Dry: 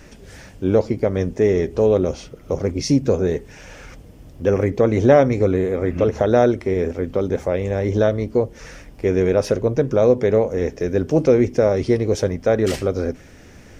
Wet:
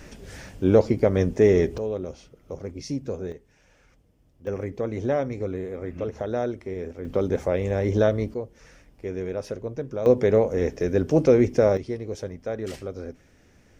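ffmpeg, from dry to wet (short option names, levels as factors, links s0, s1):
-af "asetnsamples=n=441:p=0,asendcmd='1.78 volume volume -13dB;3.32 volume volume -20dB;4.47 volume volume -12dB;7.05 volume volume -3dB;8.34 volume volume -13dB;10.06 volume volume -2.5dB;11.77 volume volume -13dB',volume=0.944"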